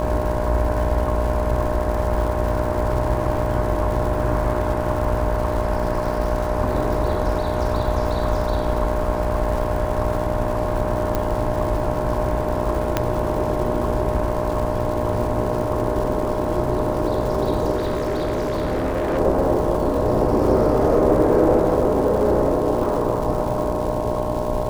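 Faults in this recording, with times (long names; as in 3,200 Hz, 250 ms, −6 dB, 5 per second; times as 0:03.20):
mains buzz 60 Hz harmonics 18 −26 dBFS
surface crackle 230 per second −29 dBFS
whistle 610 Hz −25 dBFS
0:11.15: click −9 dBFS
0:12.97: click −4 dBFS
0:17.75–0:19.19: clipping −18.5 dBFS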